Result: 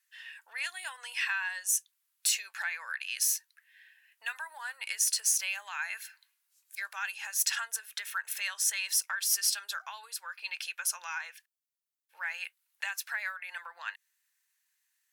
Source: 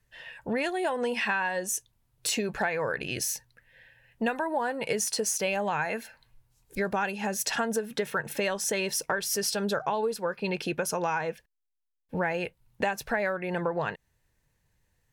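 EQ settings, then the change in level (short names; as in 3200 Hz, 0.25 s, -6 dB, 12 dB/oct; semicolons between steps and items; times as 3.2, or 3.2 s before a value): HPF 1300 Hz 24 dB/oct; high shelf 5700 Hz +8 dB; -2.5 dB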